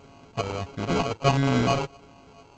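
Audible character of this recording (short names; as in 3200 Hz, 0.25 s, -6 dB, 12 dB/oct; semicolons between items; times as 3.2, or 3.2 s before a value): a buzz of ramps at a fixed pitch in blocks of 64 samples; phasing stages 12, 1.5 Hz, lowest notch 210–1300 Hz; aliases and images of a low sample rate 1800 Hz, jitter 0%; G.722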